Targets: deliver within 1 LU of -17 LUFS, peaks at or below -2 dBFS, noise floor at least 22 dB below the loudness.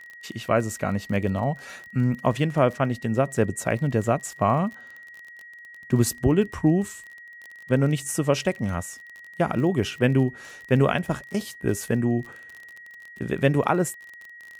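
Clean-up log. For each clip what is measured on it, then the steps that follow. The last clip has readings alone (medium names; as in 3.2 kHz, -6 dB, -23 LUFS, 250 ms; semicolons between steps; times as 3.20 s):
tick rate 29 per s; steady tone 1.9 kHz; tone level -42 dBFS; loudness -24.5 LUFS; peak level -7.5 dBFS; loudness target -17.0 LUFS
-> de-click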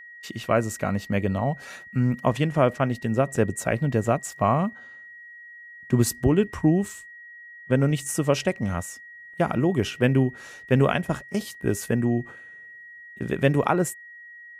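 tick rate 0 per s; steady tone 1.9 kHz; tone level -42 dBFS
-> band-stop 1.9 kHz, Q 30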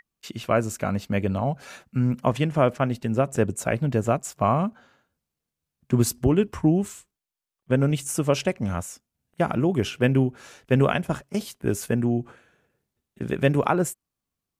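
steady tone not found; loudness -24.5 LUFS; peak level -7.5 dBFS; loudness target -17.0 LUFS
-> trim +7.5 dB; peak limiter -2 dBFS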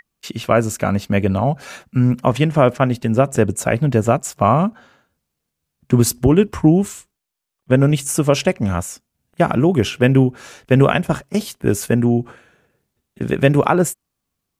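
loudness -17.5 LUFS; peak level -2.0 dBFS; noise floor -79 dBFS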